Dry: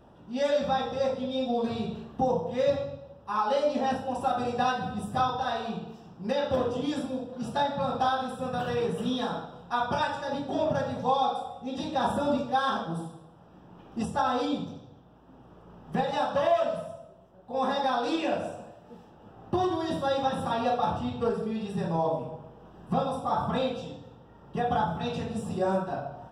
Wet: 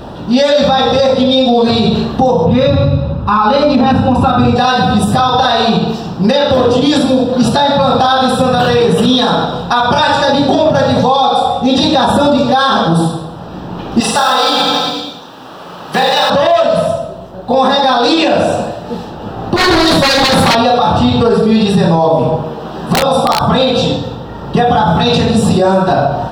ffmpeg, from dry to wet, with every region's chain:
ffmpeg -i in.wav -filter_complex "[0:a]asettb=1/sr,asplit=3[link_01][link_02][link_03];[link_01]atrim=end=2.464[link_04];[link_02]atrim=start=2.46:end=4.56,asetpts=PTS-STARTPTS,afade=type=in:duration=0.004:curve=qsin,afade=type=out:start_time=2.096:duration=0.004:curve=qsin,bass=frequency=250:gain=9,treble=frequency=4000:gain=-12,aecho=1:1:0.8:0.41,atrim=end_sample=92610[link_05];[link_03]atrim=start=4.556[link_06];[link_04][link_05]acrossfade=duration=0.004:curve1=hsin:curve2=qsin[link_07];[link_07][link_06]acrossfade=duration=0.004:curve1=qsin:curve2=hsin,asettb=1/sr,asplit=3[link_08][link_09][link_10];[link_08]atrim=end=14.004[link_11];[link_09]atrim=start=14:end=16.3,asetpts=PTS-STARTPTS,afade=type=in:duration=0.004:curve=qsin,afade=type=out:start_time=2.296:duration=0.004:curve=qsin,highpass=frequency=1300:poles=1,acrusher=bits=7:mode=log:mix=0:aa=0.000001,aecho=1:1:40|86|138.9|199.7|269.7|350.1|442.7|549.1:0.794|0.631|0.501|0.398|0.316|0.251|0.2|0.158,atrim=end_sample=101430[link_12];[link_10]atrim=start=16.296[link_13];[link_11][link_12]acrossfade=duration=0.004:curve1=hsin:curve2=qsin[link_14];[link_14][link_13]acrossfade=duration=0.004:curve1=qsin:curve2=hsin,asettb=1/sr,asplit=3[link_15][link_16][link_17];[link_15]atrim=end=19.564[link_18];[link_16]atrim=start=19.56:end=20.55,asetpts=PTS-STARTPTS,afade=type=in:duration=0.004:curve=qsin,afade=type=out:start_time=0.986:duration=0.004:curve=qsin,highshelf=frequency=8400:gain=6,aeval=exprs='0.0398*(abs(mod(val(0)/0.0398+3,4)-2)-1)':channel_layout=same[link_19];[link_17]atrim=start=20.546[link_20];[link_18][link_19]acrossfade=duration=0.004:curve1=hsin:curve2=qsin[link_21];[link_21][link_20]acrossfade=duration=0.004:curve1=qsin:curve2=hsin,asettb=1/sr,asplit=3[link_22][link_23][link_24];[link_22]atrim=end=22.444[link_25];[link_23]atrim=start=22.44:end=23.41,asetpts=PTS-STARTPTS,afade=type=in:duration=0.004:curve=qsin,afade=type=out:start_time=0.966:duration=0.004:curve=qsin,highpass=frequency=200:poles=1,asplit=2[link_26][link_27];[link_27]adelay=13,volume=-3.5dB[link_28];[link_26][link_28]amix=inputs=2:normalize=0,atrim=end_sample=42777,aeval=exprs='(mod(7.94*val(0)+1,2)-1)/7.94':channel_layout=same[link_29];[link_24]atrim=start=23.406[link_30];[link_25][link_29]acrossfade=duration=0.004:curve1=hsin:curve2=qsin[link_31];[link_31][link_30]acrossfade=duration=0.004:curve1=qsin:curve2=hsin,equalizer=frequency=4200:width_type=o:width=0.35:gain=12,acompressor=threshold=-33dB:ratio=2,alimiter=level_in=28dB:limit=-1dB:release=50:level=0:latency=1,volume=-1dB" out.wav

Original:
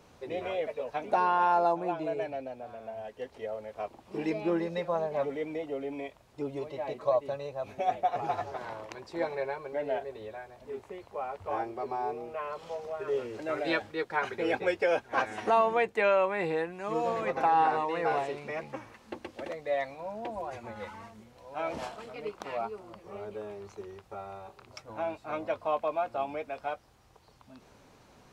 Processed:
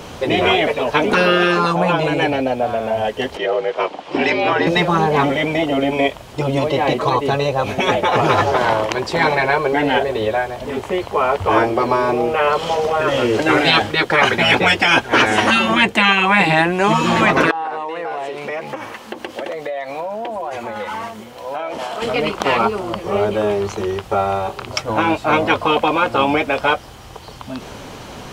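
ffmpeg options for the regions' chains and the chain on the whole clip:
ffmpeg -i in.wav -filter_complex "[0:a]asettb=1/sr,asplit=3[link_01][link_02][link_03];[link_01]atrim=end=3.374[link_04];[link_02]atrim=start=3.37:end=4.67,asetpts=PTS-STARTPTS,afade=type=in:duration=0.004:curve=qsin,afade=type=out:start_time=1.296:duration=0.004:curve=qsin,highpass=470,lowpass=4800,afreqshift=-50[link_05];[link_03]atrim=start=4.666[link_06];[link_04][link_05]acrossfade=duration=0.004:curve1=hsin:curve2=qsin[link_07];[link_07][link_06]acrossfade=duration=0.004:curve1=qsin:curve2=hsin,asettb=1/sr,asplit=3[link_08][link_09][link_10];[link_08]atrim=end=17.514[link_11];[link_09]atrim=start=17.51:end=22.02,asetpts=PTS-STARTPTS,afade=type=in:duration=0.004:curve=qsin,afade=type=out:start_time=4.506:duration=0.004:curve=qsin,lowpass=frequency=1100:poles=1,acompressor=threshold=-43dB:ratio=20:attack=3.2:release=140:knee=1:detection=peak,aemphasis=mode=production:type=riaa[link_12];[link_10]atrim=start=22.016[link_13];[link_11][link_12]acrossfade=duration=0.004:curve1=hsin:curve2=qsin[link_14];[link_14][link_13]acrossfade=duration=0.004:curve1=qsin:curve2=hsin,afftfilt=real='re*lt(hypot(re,im),0.112)':imag='im*lt(hypot(re,im),0.112)':win_size=1024:overlap=0.75,equalizer=frequency=3100:width_type=o:width=0.21:gain=7,alimiter=level_in=25dB:limit=-1dB:release=50:level=0:latency=1,volume=-1dB" out.wav

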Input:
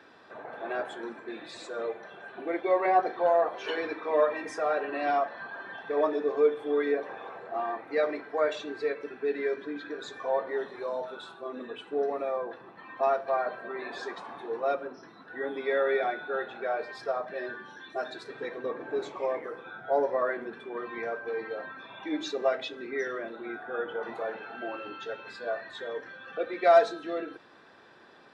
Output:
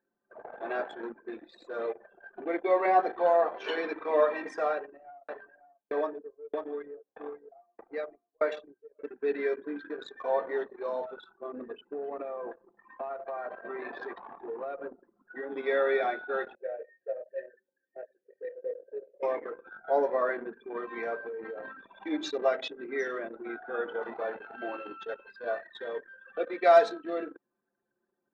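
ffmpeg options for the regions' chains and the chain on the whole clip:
ffmpeg -i in.wav -filter_complex "[0:a]asettb=1/sr,asplit=3[link_01][link_02][link_03];[link_01]atrim=end=4.664[link_04];[link_02]atrim=start=4.66:end=8.99,asetpts=PTS-STARTPTS,afade=type=in:duration=0.004:curve=qsin,afade=type=out:start_time=4.326:duration=0.004:curve=qsin,aecho=1:1:543:0.376,atrim=end_sample=190953,aeval=exprs='val(0)*pow(10,-26*if(lt(mod(1.6*n/s,1),2*abs(1.6)/1000),1-mod(1.6*n/s,1)/(2*abs(1.6)/1000),(mod(1.6*n/s,1)-2*abs(1.6)/1000)/(1-2*abs(1.6)/1000))/20)':channel_layout=same[link_05];[link_03]atrim=start=8.986[link_06];[link_04][link_05]acrossfade=duration=0.004:curve1=hsin:curve2=qsin[link_07];[link_07][link_06]acrossfade=duration=0.004:curve1=qsin:curve2=hsin,asettb=1/sr,asplit=3[link_08][link_09][link_10];[link_08]atrim=end=11.314[link_11];[link_09]atrim=start=11.31:end=15.52,asetpts=PTS-STARTPTS,afade=type=in:duration=0.004:curve=qsin,afade=type=out:start_time=4.206:duration=0.004:curve=qsin,lowpass=3100,acompressor=threshold=-32dB:ratio=12:attack=3.2:release=140:knee=1:detection=peak,aecho=1:1:277:0.0944,atrim=end_sample=185661[link_12];[link_10]atrim=start=15.516[link_13];[link_11][link_12]acrossfade=duration=0.004:curve1=hsin:curve2=qsin[link_14];[link_14][link_13]acrossfade=duration=0.004:curve1=qsin:curve2=hsin,asettb=1/sr,asplit=3[link_15][link_16][link_17];[link_15]atrim=end=16.554[link_18];[link_16]atrim=start=16.55:end=19.23,asetpts=PTS-STARTPTS,afade=type=in:duration=0.004:curve=qsin,afade=type=out:start_time=2.676:duration=0.004:curve=qsin,asplit=3[link_19][link_20][link_21];[link_19]bandpass=frequency=530:width_type=q:width=8,volume=0dB[link_22];[link_20]bandpass=frequency=1840:width_type=q:width=8,volume=-6dB[link_23];[link_21]bandpass=frequency=2480:width_type=q:width=8,volume=-9dB[link_24];[link_22][link_23][link_24]amix=inputs=3:normalize=0,lowshelf=frequency=270:gain=6.5,asplit=2[link_25][link_26];[link_26]adelay=26,volume=-7.5dB[link_27];[link_25][link_27]amix=inputs=2:normalize=0,atrim=end_sample=118188[link_28];[link_17]atrim=start=19.226[link_29];[link_18][link_28]acrossfade=duration=0.004:curve1=hsin:curve2=qsin[link_30];[link_30][link_29]acrossfade=duration=0.004:curve1=qsin:curve2=hsin,asettb=1/sr,asplit=3[link_31][link_32][link_33];[link_31]atrim=end=21.154[link_34];[link_32]atrim=start=21.15:end=22.04,asetpts=PTS-STARTPTS,afade=type=in:duration=0.004:curve=qsin,afade=type=out:start_time=0.886:duration=0.004:curve=qsin,lowshelf=frequency=450:gain=6.5,bandreject=frequency=60:width_type=h:width=6,bandreject=frequency=120:width_type=h:width=6,bandreject=frequency=180:width_type=h:width=6,bandreject=frequency=240:width_type=h:width=6,bandreject=frequency=300:width_type=h:width=6,bandreject=frequency=360:width_type=h:width=6,bandreject=frequency=420:width_type=h:width=6,bandreject=frequency=480:width_type=h:width=6,bandreject=frequency=540:width_type=h:width=6,bandreject=frequency=600:width_type=h:width=6,acompressor=threshold=-34dB:ratio=12:attack=3.2:release=140:knee=1:detection=peak[link_35];[link_33]atrim=start=22.036[link_36];[link_34][link_35]acrossfade=duration=0.004:curve1=hsin:curve2=qsin[link_37];[link_37][link_36]acrossfade=duration=0.004:curve1=qsin:curve2=hsin,highpass=frequency=170:width=0.5412,highpass=frequency=170:width=1.3066,anlmdn=0.631" out.wav

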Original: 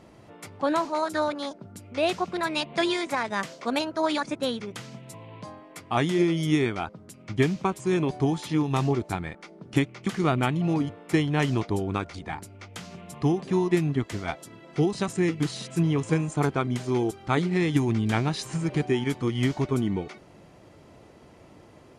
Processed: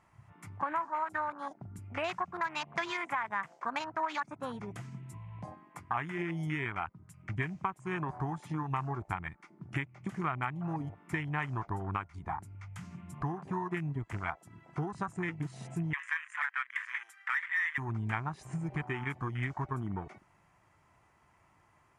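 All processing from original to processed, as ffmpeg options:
ffmpeg -i in.wav -filter_complex "[0:a]asettb=1/sr,asplit=3[link_01][link_02][link_03];[link_01]atrim=end=15.934[link_04];[link_02]atrim=start=15.93:end=17.78,asetpts=PTS-STARTPTS,afade=type=in:duration=0.004:curve=qsin,afade=type=out:start_time=1.846:duration=0.004:curve=qsin,highpass=frequency=1800:width_type=q:width=7.6,asoftclip=type=hard:threshold=-21dB[link_05];[link_03]atrim=start=17.776[link_06];[link_04][link_05]acrossfade=duration=0.004:curve1=hsin:curve2=qsin[link_07];[link_07][link_06]acrossfade=duration=0.004:curve1=qsin:curve2=hsin,afwtdn=0.0178,equalizer=frequency=250:width_type=o:width=1:gain=-8,equalizer=frequency=500:width_type=o:width=1:gain=-12,equalizer=frequency=1000:width_type=o:width=1:gain=9,equalizer=frequency=2000:width_type=o:width=1:gain=6,equalizer=frequency=4000:width_type=o:width=1:gain=-8,equalizer=frequency=8000:width_type=o:width=1:gain=4,acompressor=threshold=-38dB:ratio=3,volume=3dB" out.wav

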